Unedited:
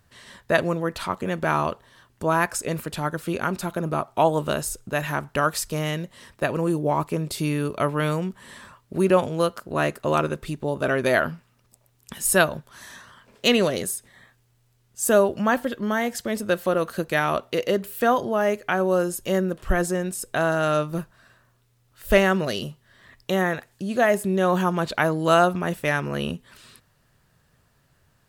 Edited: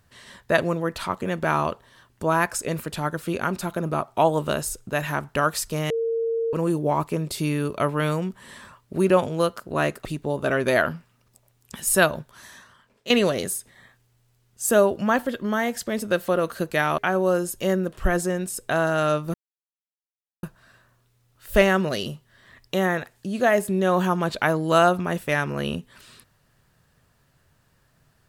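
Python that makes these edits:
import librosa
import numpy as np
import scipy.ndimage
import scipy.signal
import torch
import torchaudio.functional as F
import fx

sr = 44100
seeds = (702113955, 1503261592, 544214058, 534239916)

y = fx.edit(x, sr, fx.bleep(start_s=5.9, length_s=0.63, hz=457.0, db=-21.5),
    fx.cut(start_s=10.05, length_s=0.38),
    fx.fade_out_to(start_s=12.57, length_s=0.91, floor_db=-14.0),
    fx.cut(start_s=17.36, length_s=1.27),
    fx.insert_silence(at_s=20.99, length_s=1.09), tone=tone)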